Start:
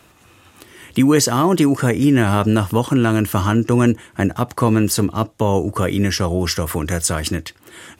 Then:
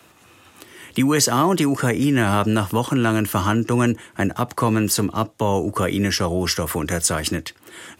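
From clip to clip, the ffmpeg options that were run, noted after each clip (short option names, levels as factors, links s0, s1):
-filter_complex "[0:a]acrossover=split=200|630|2600[s0][s1][s2][s3];[s1]alimiter=limit=0.15:level=0:latency=1[s4];[s0][s4][s2][s3]amix=inputs=4:normalize=0,highpass=f=140:p=1"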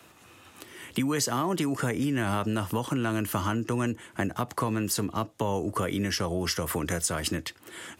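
-af "acompressor=threshold=0.0708:ratio=3,volume=0.708"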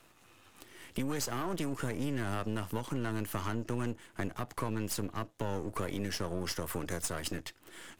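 -af "aeval=exprs='if(lt(val(0),0),0.251*val(0),val(0))':c=same,volume=0.596"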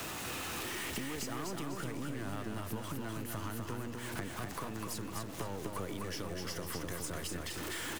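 -af "aeval=exprs='val(0)+0.5*0.0126*sgn(val(0))':c=same,acompressor=threshold=0.00891:ratio=5,aecho=1:1:250|500|750|1000|1250:0.631|0.24|0.0911|0.0346|0.0132,volume=1.33"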